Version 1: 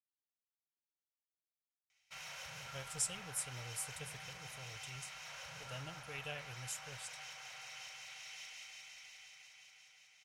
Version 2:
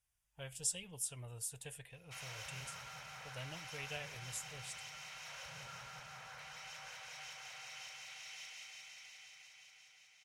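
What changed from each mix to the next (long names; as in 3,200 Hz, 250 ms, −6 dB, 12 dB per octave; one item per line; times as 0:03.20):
speech: entry −2.35 s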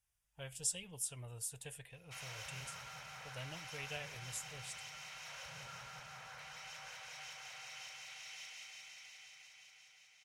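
nothing changed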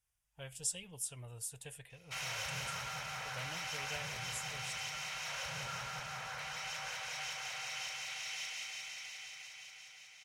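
background +8.5 dB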